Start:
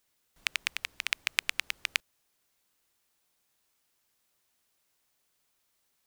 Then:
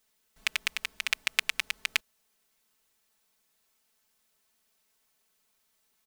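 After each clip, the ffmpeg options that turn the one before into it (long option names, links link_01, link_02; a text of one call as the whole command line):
ffmpeg -i in.wav -af "aecho=1:1:4.6:0.74" out.wav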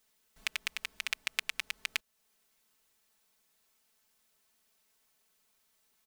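ffmpeg -i in.wav -af "acompressor=threshold=-39dB:ratio=1.5" out.wav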